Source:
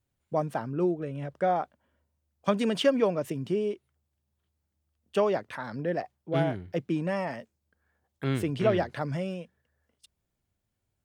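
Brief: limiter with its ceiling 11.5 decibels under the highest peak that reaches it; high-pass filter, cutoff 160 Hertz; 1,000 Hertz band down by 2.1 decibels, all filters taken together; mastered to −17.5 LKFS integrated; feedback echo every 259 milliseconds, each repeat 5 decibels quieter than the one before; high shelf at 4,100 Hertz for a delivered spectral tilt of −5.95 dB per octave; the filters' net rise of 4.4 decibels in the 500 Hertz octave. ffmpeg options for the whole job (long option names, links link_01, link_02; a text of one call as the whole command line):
ffmpeg -i in.wav -af "highpass=160,equalizer=frequency=500:width_type=o:gain=8,equalizer=frequency=1000:width_type=o:gain=-8,highshelf=frequency=4100:gain=-6.5,alimiter=limit=-19.5dB:level=0:latency=1,aecho=1:1:259|518|777|1036|1295|1554|1813:0.562|0.315|0.176|0.0988|0.0553|0.031|0.0173,volume=12.5dB" out.wav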